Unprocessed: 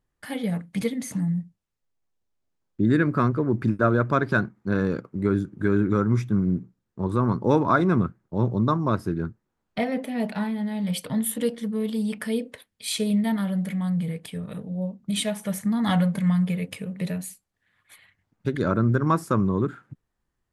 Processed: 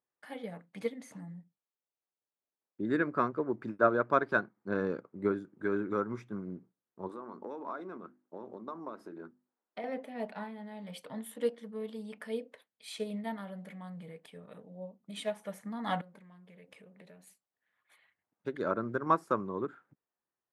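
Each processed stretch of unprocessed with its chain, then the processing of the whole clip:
4.57–5.32 LPF 11000 Hz + low shelf 300 Hz +5 dB
7.09–9.84 resonant low shelf 170 Hz -10 dB, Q 1.5 + compressor 16:1, threshold -25 dBFS + notches 50/100/150/200/250/300/350 Hz
16.01–17.27 compressor, threshold -36 dBFS + Doppler distortion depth 0.12 ms
whole clip: HPF 580 Hz 12 dB/oct; tilt -3.5 dB/oct; upward expander 1.5:1, over -34 dBFS; gain -1 dB

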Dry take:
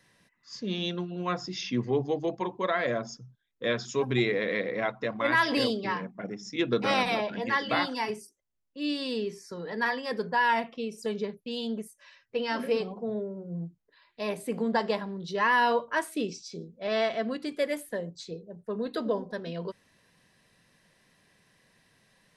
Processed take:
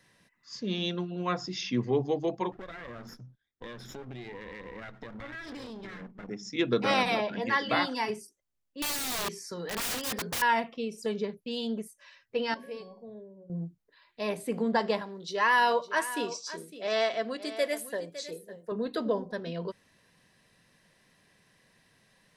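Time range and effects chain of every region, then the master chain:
2.52–6.29 minimum comb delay 0.55 ms + LPF 3500 Hz 6 dB/oct + compressor 8:1, threshold -39 dBFS
8.82–10.42 high shelf 2300 Hz +7.5 dB + wrapped overs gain 27.5 dB
12.54–13.5 Butterworth band-stop 1300 Hz, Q 4.2 + resonator 560 Hz, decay 0.39 s, mix 80%
15.01–18.72 tone controls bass -12 dB, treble +5 dB + echo 0.557 s -14 dB
whole clip: dry

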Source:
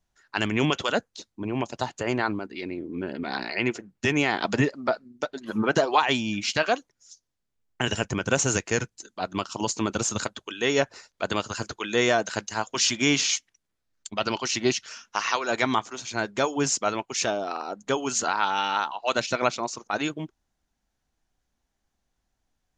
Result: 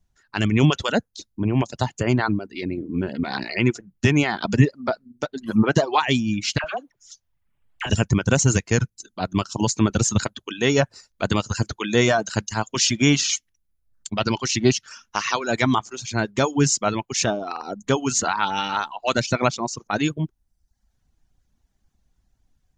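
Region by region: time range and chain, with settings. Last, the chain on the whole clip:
6.58–7.9 band shelf 1400 Hz +10.5 dB 2.9 oct + compressor 4:1, threshold -29 dBFS + dispersion lows, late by 61 ms, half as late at 1000 Hz
whole clip: reverb removal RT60 0.71 s; tone controls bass +12 dB, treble +2 dB; AGC gain up to 4 dB; gain -1 dB

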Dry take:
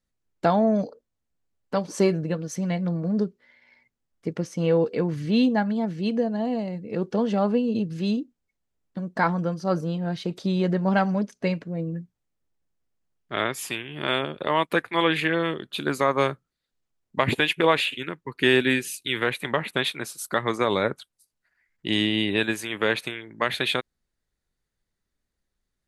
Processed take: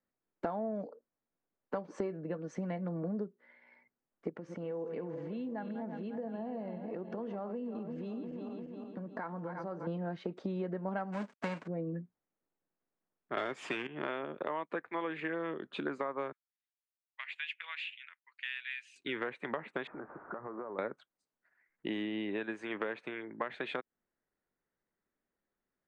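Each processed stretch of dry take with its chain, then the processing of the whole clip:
4.29–9.87 regenerating reverse delay 0.175 s, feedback 70%, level -12 dB + compressor 5:1, threshold -35 dBFS
11.12–11.66 spectral whitening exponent 0.3 + companded quantiser 4-bit + mismatched tape noise reduction decoder only
13.37–13.87 bell 3100 Hz +5.5 dB 0.86 oct + sample leveller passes 3
16.32–18.96 ladder high-pass 2000 Hz, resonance 30% + high shelf 7000 Hz -4.5 dB
19.87–20.79 zero-crossing step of -29.5 dBFS + steep low-pass 1500 Hz + compressor 20:1, threshold -36 dBFS
whole clip: steep low-pass 8200 Hz; three-band isolator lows -18 dB, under 190 Hz, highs -21 dB, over 2100 Hz; compressor 6:1, threshold -34 dBFS

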